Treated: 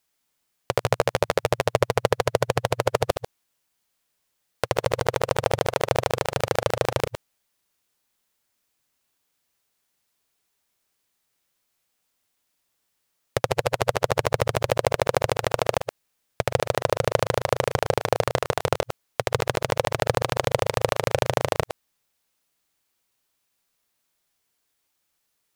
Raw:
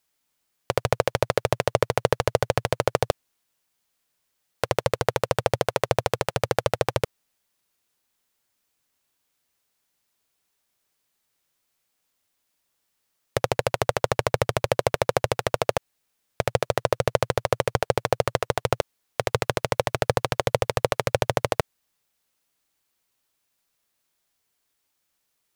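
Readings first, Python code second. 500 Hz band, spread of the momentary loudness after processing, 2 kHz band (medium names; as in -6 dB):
+0.5 dB, 6 LU, +0.5 dB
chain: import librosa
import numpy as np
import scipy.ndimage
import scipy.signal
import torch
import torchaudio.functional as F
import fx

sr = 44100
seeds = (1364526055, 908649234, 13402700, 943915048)

y = fx.reverse_delay(x, sr, ms=112, wet_db=-8.5)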